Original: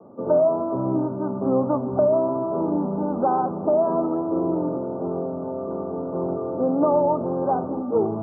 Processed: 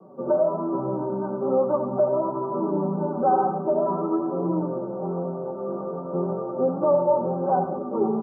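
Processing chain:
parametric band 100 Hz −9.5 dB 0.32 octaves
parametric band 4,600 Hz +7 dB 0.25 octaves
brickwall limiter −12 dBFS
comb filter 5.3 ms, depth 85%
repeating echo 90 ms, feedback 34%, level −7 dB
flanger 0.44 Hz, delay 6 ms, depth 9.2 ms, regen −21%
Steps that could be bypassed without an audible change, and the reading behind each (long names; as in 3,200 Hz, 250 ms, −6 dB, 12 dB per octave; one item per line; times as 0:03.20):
parametric band 4,600 Hz: nothing at its input above 1,400 Hz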